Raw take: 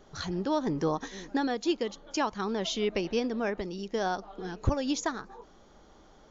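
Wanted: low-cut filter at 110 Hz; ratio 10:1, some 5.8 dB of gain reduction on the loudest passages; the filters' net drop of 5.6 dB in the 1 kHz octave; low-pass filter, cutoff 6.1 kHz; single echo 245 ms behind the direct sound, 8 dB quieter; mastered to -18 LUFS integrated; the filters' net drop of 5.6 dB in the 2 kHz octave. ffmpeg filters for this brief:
-af "highpass=110,lowpass=6100,equalizer=f=1000:t=o:g=-6.5,equalizer=f=2000:t=o:g=-5,acompressor=threshold=0.0316:ratio=10,aecho=1:1:245:0.398,volume=7.94"

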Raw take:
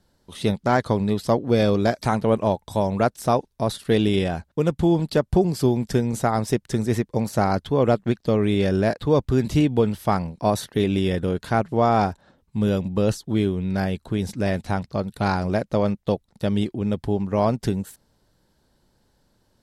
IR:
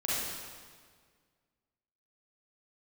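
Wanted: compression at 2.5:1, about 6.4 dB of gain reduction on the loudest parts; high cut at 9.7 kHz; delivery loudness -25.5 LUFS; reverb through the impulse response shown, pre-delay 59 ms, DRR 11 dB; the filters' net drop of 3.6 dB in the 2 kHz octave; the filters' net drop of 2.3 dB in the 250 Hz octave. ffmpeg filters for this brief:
-filter_complex "[0:a]lowpass=9700,equalizer=f=250:t=o:g=-3,equalizer=f=2000:t=o:g=-5,acompressor=threshold=0.0562:ratio=2.5,asplit=2[s0][s1];[1:a]atrim=start_sample=2205,adelay=59[s2];[s1][s2]afir=irnorm=-1:irlink=0,volume=0.112[s3];[s0][s3]amix=inputs=2:normalize=0,volume=1.41"

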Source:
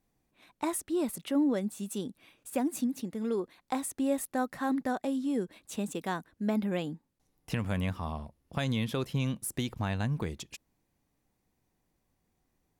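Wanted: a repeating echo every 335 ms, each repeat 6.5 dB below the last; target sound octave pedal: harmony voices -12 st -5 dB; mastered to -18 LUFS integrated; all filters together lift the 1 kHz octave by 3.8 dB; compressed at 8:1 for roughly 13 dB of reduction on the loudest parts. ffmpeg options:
-filter_complex "[0:a]equalizer=f=1000:t=o:g=5,acompressor=threshold=0.0141:ratio=8,aecho=1:1:335|670|1005|1340|1675|2010:0.473|0.222|0.105|0.0491|0.0231|0.0109,asplit=2[s0][s1];[s1]asetrate=22050,aresample=44100,atempo=2,volume=0.562[s2];[s0][s2]amix=inputs=2:normalize=0,volume=13.3"

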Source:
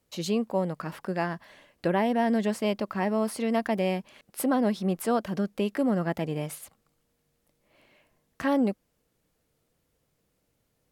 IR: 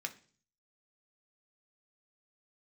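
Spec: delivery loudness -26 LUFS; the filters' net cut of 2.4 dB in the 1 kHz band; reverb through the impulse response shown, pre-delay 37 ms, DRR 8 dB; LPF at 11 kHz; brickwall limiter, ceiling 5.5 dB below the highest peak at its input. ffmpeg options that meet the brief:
-filter_complex "[0:a]lowpass=11000,equalizer=f=1000:t=o:g=-3.5,alimiter=limit=0.0944:level=0:latency=1,asplit=2[s0][s1];[1:a]atrim=start_sample=2205,adelay=37[s2];[s1][s2]afir=irnorm=-1:irlink=0,volume=0.376[s3];[s0][s3]amix=inputs=2:normalize=0,volume=1.68"

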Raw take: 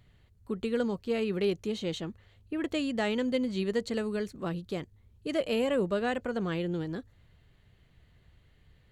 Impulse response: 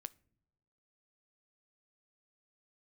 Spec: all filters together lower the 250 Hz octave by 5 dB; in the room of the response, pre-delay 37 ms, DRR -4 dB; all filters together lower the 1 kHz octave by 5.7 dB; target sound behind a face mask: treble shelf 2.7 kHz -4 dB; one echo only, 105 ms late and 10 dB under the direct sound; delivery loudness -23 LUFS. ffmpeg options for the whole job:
-filter_complex "[0:a]equalizer=f=250:t=o:g=-6,equalizer=f=1000:t=o:g=-7.5,aecho=1:1:105:0.316,asplit=2[s0][s1];[1:a]atrim=start_sample=2205,adelay=37[s2];[s1][s2]afir=irnorm=-1:irlink=0,volume=2.82[s3];[s0][s3]amix=inputs=2:normalize=0,highshelf=f=2700:g=-4,volume=2.11"

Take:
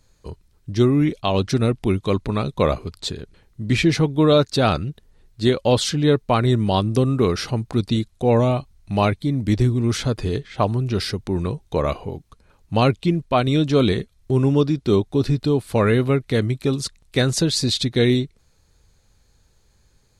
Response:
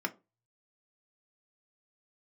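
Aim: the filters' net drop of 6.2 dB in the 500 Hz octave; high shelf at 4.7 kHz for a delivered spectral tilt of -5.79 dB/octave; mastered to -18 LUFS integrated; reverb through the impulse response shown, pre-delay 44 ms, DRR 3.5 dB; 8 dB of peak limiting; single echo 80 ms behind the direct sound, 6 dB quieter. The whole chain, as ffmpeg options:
-filter_complex "[0:a]equalizer=f=500:t=o:g=-8,highshelf=f=4700:g=-4.5,alimiter=limit=0.168:level=0:latency=1,aecho=1:1:80:0.501,asplit=2[s0][s1];[1:a]atrim=start_sample=2205,adelay=44[s2];[s1][s2]afir=irnorm=-1:irlink=0,volume=0.376[s3];[s0][s3]amix=inputs=2:normalize=0,volume=2"

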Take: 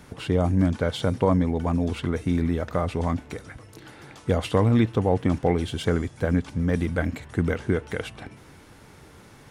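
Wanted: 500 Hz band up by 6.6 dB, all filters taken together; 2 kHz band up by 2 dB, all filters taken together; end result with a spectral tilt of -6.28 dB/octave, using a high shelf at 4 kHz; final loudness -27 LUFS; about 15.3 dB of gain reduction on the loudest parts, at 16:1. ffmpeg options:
-af "equalizer=f=500:t=o:g=7.5,equalizer=f=2000:t=o:g=3.5,highshelf=f=4000:g=-6.5,acompressor=threshold=0.0447:ratio=16,volume=2.24"

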